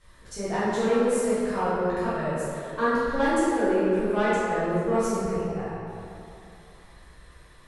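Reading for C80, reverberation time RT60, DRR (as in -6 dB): -2.0 dB, 2.9 s, -12.5 dB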